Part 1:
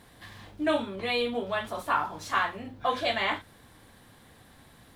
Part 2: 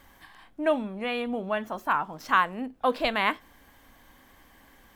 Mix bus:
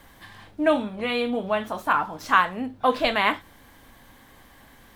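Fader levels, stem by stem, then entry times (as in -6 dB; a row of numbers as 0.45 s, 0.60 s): -2.5 dB, +3.0 dB; 0.00 s, 0.00 s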